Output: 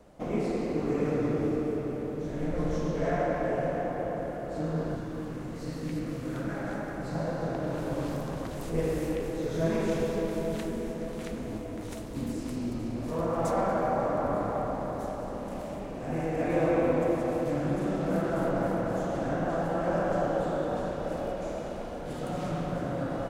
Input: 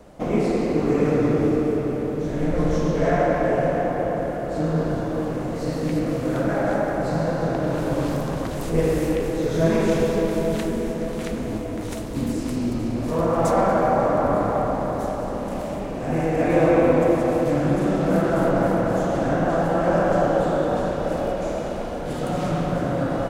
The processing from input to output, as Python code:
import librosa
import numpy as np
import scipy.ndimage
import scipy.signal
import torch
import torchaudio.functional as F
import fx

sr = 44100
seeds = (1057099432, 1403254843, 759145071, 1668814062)

y = fx.peak_eq(x, sr, hz=620.0, db=-7.5, octaves=1.1, at=(4.96, 7.15))
y = F.gain(torch.from_numpy(y), -8.5).numpy()